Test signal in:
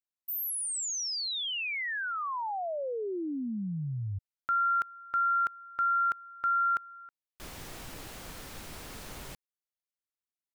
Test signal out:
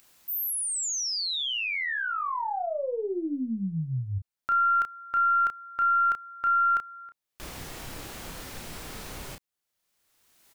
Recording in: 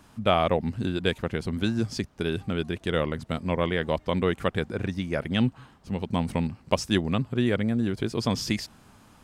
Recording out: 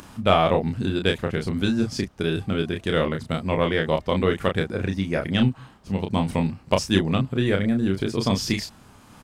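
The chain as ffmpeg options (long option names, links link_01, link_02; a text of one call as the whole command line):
ffmpeg -i in.wav -filter_complex "[0:a]aeval=exprs='0.631*(cos(1*acos(clip(val(0)/0.631,-1,1)))-cos(1*PI/2))+0.0158*(cos(6*acos(clip(val(0)/0.631,-1,1)))-cos(6*PI/2))':channel_layout=same,acompressor=mode=upward:threshold=-38dB:ratio=2.5:attack=2.7:release=697:knee=2.83:detection=peak,asplit=2[link_01][link_02];[link_02]adelay=31,volume=-5dB[link_03];[link_01][link_03]amix=inputs=2:normalize=0,volume=2.5dB" out.wav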